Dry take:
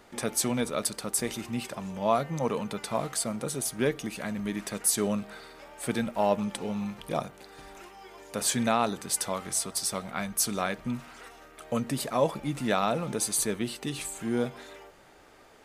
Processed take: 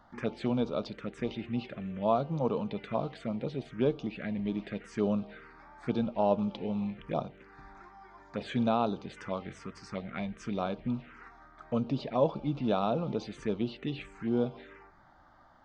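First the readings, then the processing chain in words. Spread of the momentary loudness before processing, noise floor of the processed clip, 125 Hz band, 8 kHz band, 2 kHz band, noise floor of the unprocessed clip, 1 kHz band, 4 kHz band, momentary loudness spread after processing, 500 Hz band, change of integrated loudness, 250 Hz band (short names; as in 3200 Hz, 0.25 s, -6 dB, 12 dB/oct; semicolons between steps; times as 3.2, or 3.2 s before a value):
18 LU, -59 dBFS, 0.0 dB, under -30 dB, -8.0 dB, -55 dBFS, -3.5 dB, -10.5 dB, 16 LU, -1.5 dB, -3.5 dB, -0.5 dB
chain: Gaussian blur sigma 2.3 samples; envelope phaser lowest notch 400 Hz, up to 1900 Hz, full sweep at -27.5 dBFS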